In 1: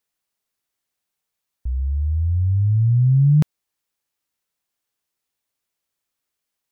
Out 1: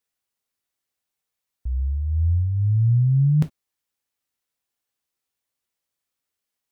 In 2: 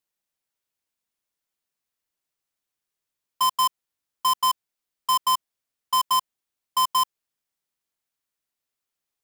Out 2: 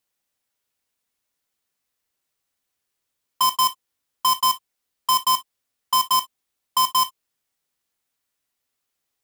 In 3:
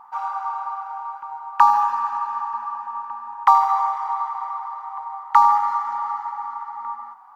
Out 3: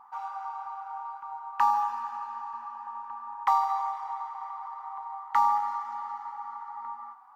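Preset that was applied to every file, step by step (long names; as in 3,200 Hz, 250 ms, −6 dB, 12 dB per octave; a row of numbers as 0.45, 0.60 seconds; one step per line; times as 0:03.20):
dynamic equaliser 1,200 Hz, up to −5 dB, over −30 dBFS, Q 1
reverb whose tail is shaped and stops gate 80 ms falling, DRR 7.5 dB
normalise the peak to −12 dBFS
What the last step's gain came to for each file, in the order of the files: −3.5, +5.0, −7.0 decibels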